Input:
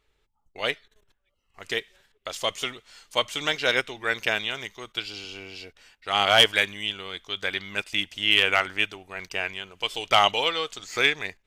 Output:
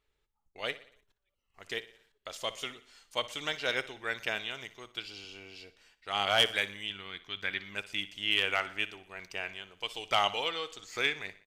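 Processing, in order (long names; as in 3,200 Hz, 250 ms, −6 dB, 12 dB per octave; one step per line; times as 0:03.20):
0:06.90–0:07.59: octave-band graphic EQ 125/250/500/2,000/8,000 Hz +5/+3/−5/+5/−7 dB
repeating echo 60 ms, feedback 52%, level −16.5 dB
level −8.5 dB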